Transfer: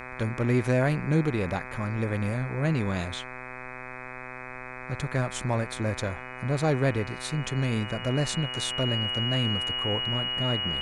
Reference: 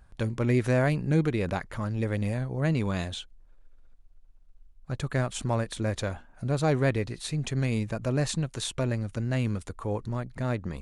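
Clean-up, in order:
hum removal 126.8 Hz, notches 20
notch filter 2,900 Hz, Q 30
downward expander −32 dBFS, range −21 dB

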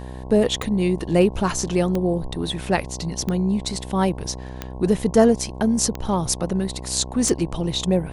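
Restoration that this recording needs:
click removal
hum removal 63.6 Hz, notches 17

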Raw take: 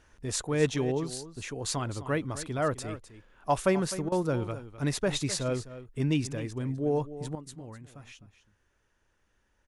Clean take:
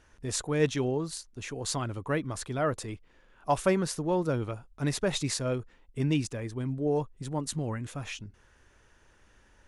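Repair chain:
repair the gap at 0:04.09, 28 ms
echo removal 256 ms −14 dB
level 0 dB, from 0:07.35 +11.5 dB

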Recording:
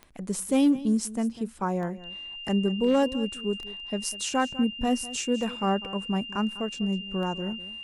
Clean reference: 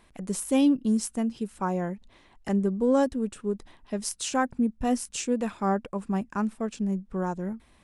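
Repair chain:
clipped peaks rebuilt −15.5 dBFS
click removal
notch filter 2,800 Hz, Q 30
echo removal 199 ms −17 dB

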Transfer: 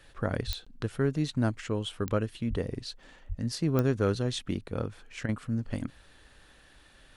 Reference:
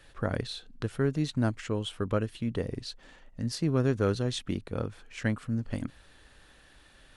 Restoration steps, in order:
click removal
high-pass at the plosives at 0:00.46/0:02.49/0:03.28
repair the gap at 0:00.65, 15 ms
repair the gap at 0:05.26, 26 ms

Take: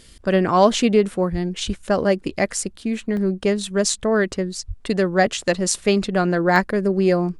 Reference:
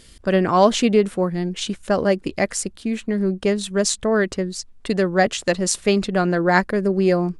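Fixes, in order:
high-pass at the plosives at 0:01.31/0:01.66/0:04.67
repair the gap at 0:03.17/0:06.56, 1.3 ms

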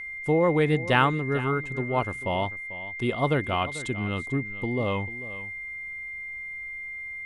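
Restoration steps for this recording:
notch filter 2,100 Hz, Q 30
echo removal 443 ms −15.5 dB

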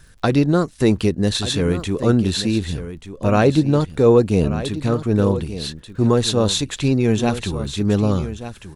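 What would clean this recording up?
click removal
echo removal 1,185 ms −12.5 dB

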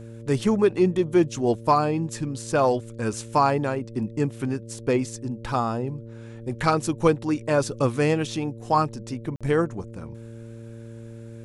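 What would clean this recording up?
hum removal 114.5 Hz, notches 5
repair the gap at 0:09.36, 46 ms

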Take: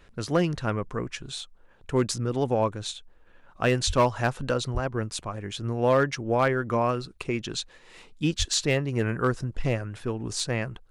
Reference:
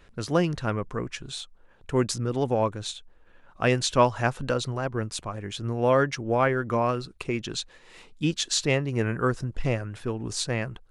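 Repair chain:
clipped peaks rebuilt −14 dBFS
high-pass at the plosives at 0:03.86/0:04.73/0:08.38

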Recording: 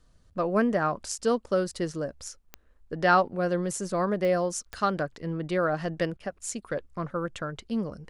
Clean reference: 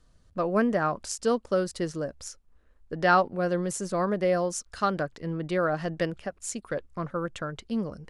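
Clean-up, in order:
click removal
repair the gap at 0:06.17, 28 ms

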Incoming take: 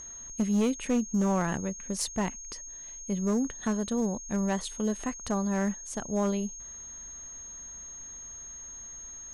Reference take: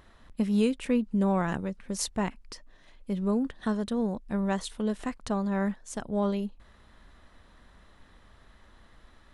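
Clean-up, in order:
clipped peaks rebuilt −21 dBFS
notch filter 6,500 Hz, Q 30

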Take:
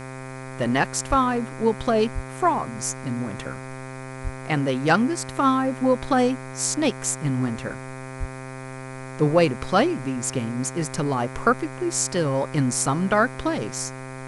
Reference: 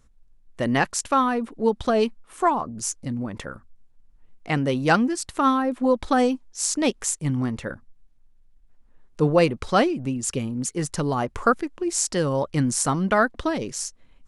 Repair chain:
hum removal 131.2 Hz, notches 19
high-pass at the plosives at 0:01.09/0:02.14/0:04.23/0:08.19
noise reduction from a noise print 17 dB

